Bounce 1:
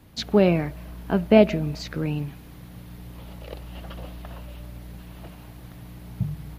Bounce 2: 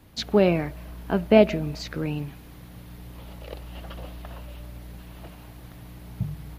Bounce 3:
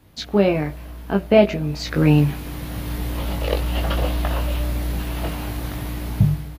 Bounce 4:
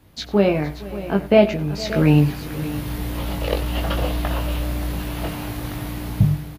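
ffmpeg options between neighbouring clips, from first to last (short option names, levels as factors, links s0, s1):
-af "equalizer=f=160:w=1.1:g=-3"
-filter_complex "[0:a]asplit=2[s0][s1];[s1]adelay=20,volume=0.562[s2];[s0][s2]amix=inputs=2:normalize=0,dynaudnorm=f=100:g=9:m=6.68,volume=0.891"
-af "aecho=1:1:94|462|580:0.119|0.112|0.188"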